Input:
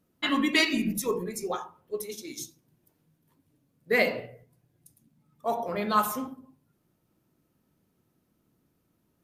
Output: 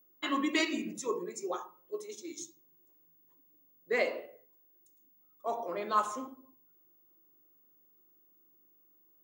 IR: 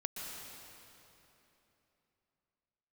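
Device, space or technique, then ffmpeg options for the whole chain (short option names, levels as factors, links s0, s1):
old television with a line whistle: -filter_complex "[0:a]asettb=1/sr,asplit=3[s0][s1][s2];[s0]atrim=end=4.004[s3];[s1]atrim=start=4:end=5.47,asetpts=PTS-STARTPTS,afade=t=in:d=0.004:c=qsin,afade=t=out:st=1.466:d=0.004:c=qsin,highpass=260[s4];[s2]atrim=start=5.466[s5];[s3][s4]acrossfade=d=0.004:c1=hsin:c2=qsin[s6];[s6][s5]acrossfade=d=0.004:c1=qsin:c2=hsin,highpass=f=170:w=0.5412,highpass=f=170:w=1.3066,equalizer=f=200:t=q:w=4:g=-9,equalizer=f=340:t=q:w=4:g=8,equalizer=f=570:t=q:w=4:g=5,equalizer=f=1100:t=q:w=4:g=6,equalizer=f=4700:t=q:w=4:g=-3,equalizer=f=7000:t=q:w=4:g=9,lowpass=f=7700:w=0.5412,lowpass=f=7700:w=1.3066,aeval=exprs='val(0)+0.00178*sin(2*PI*15625*n/s)':c=same,volume=0.398"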